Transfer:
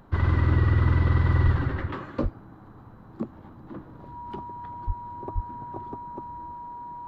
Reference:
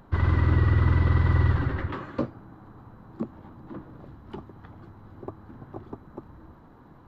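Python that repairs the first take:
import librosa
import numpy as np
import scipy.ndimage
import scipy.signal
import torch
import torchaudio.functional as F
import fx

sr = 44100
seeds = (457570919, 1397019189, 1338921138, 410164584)

y = fx.notch(x, sr, hz=960.0, q=30.0)
y = fx.fix_deplosive(y, sr, at_s=(1.44, 2.22, 4.86, 5.34))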